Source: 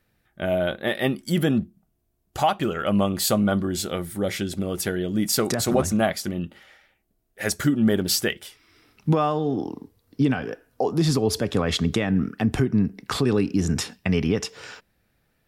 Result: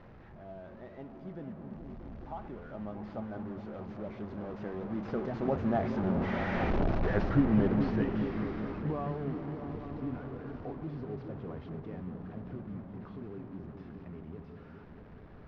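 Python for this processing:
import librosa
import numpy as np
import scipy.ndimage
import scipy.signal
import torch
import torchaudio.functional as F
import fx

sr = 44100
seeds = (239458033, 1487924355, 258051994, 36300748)

p1 = fx.delta_mod(x, sr, bps=32000, step_db=-20.5)
p2 = fx.doppler_pass(p1, sr, speed_mps=16, closest_m=7.0, pass_at_s=6.72)
p3 = scipy.signal.sosfilt(scipy.signal.butter(2, 1100.0, 'lowpass', fs=sr, output='sos'), p2)
y = p3 + fx.echo_opening(p3, sr, ms=212, hz=200, octaves=1, feedback_pct=70, wet_db=-3, dry=0)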